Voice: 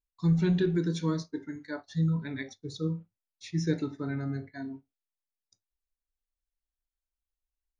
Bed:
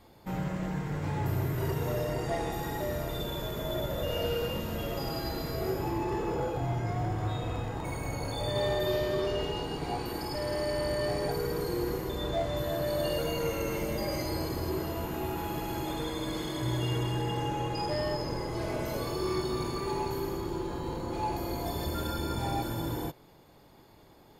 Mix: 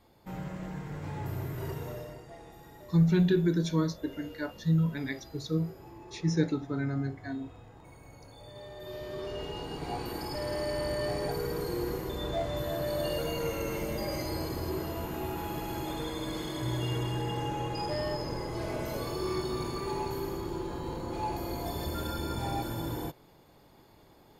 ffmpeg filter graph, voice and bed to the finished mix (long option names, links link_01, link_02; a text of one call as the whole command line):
ffmpeg -i stem1.wav -i stem2.wav -filter_complex "[0:a]adelay=2700,volume=1.5dB[link_01];[1:a]volume=10dB,afade=type=out:start_time=1.72:duration=0.53:silence=0.266073,afade=type=in:start_time=8.73:duration=1.31:silence=0.16788[link_02];[link_01][link_02]amix=inputs=2:normalize=0" out.wav